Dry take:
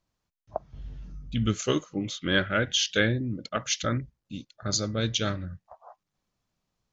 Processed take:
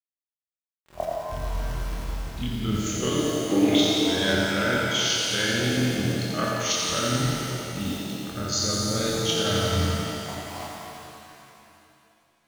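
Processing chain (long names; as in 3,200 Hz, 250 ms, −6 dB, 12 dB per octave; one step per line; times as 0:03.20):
bit reduction 8 bits
reversed playback
downward compressor, threshold −33 dBFS, peak gain reduction 14 dB
reversed playback
gain on a spectral selection 0:01.89–0:02.12, 240–4,000 Hz +11 dB
time stretch by overlap-add 1.8×, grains 110 ms
on a send: feedback echo with a high-pass in the loop 87 ms, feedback 79%, high-pass 170 Hz, level −6 dB
on the sum: reverb with rising layers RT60 2.6 s, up +7 semitones, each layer −8 dB, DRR −0.5 dB
level +8 dB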